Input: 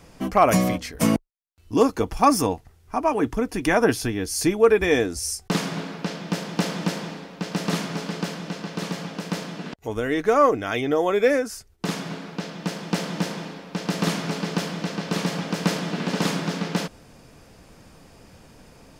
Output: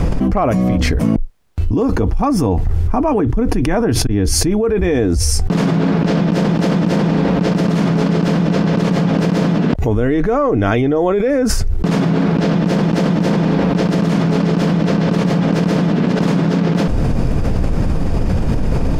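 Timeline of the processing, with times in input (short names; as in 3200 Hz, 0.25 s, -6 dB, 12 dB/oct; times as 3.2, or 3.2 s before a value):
4.07–5.43 fade in
whole clip: tilt -3.5 dB/oct; fast leveller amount 100%; gain -6 dB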